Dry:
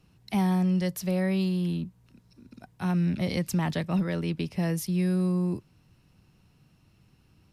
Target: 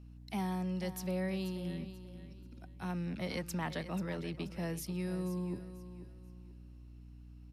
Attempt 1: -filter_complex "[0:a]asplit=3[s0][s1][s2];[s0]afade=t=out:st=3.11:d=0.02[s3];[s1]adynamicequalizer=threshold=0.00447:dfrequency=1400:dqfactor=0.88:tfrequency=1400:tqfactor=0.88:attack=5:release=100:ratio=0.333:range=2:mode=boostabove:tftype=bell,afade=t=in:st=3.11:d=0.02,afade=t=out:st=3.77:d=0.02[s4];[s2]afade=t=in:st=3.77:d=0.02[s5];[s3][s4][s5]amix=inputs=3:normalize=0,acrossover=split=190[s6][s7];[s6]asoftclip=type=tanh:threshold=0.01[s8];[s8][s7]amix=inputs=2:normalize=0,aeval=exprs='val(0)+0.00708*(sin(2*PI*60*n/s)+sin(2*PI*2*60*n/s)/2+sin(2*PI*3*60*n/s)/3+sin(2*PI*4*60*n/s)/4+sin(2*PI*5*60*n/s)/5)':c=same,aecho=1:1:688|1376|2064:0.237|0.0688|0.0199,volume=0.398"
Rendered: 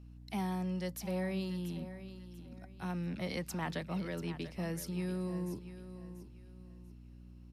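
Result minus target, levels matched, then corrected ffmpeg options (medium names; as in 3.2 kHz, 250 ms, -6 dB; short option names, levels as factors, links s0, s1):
echo 202 ms late
-filter_complex "[0:a]asplit=3[s0][s1][s2];[s0]afade=t=out:st=3.11:d=0.02[s3];[s1]adynamicequalizer=threshold=0.00447:dfrequency=1400:dqfactor=0.88:tfrequency=1400:tqfactor=0.88:attack=5:release=100:ratio=0.333:range=2:mode=boostabove:tftype=bell,afade=t=in:st=3.11:d=0.02,afade=t=out:st=3.77:d=0.02[s4];[s2]afade=t=in:st=3.77:d=0.02[s5];[s3][s4][s5]amix=inputs=3:normalize=0,acrossover=split=190[s6][s7];[s6]asoftclip=type=tanh:threshold=0.01[s8];[s8][s7]amix=inputs=2:normalize=0,aeval=exprs='val(0)+0.00708*(sin(2*PI*60*n/s)+sin(2*PI*2*60*n/s)/2+sin(2*PI*3*60*n/s)/3+sin(2*PI*4*60*n/s)/4+sin(2*PI*5*60*n/s)/5)':c=same,aecho=1:1:486|972|1458:0.237|0.0688|0.0199,volume=0.398"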